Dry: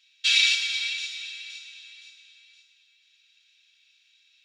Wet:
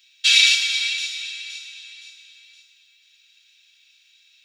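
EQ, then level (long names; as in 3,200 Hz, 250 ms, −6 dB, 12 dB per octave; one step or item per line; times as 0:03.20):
high-shelf EQ 9,400 Hz +12 dB
+4.5 dB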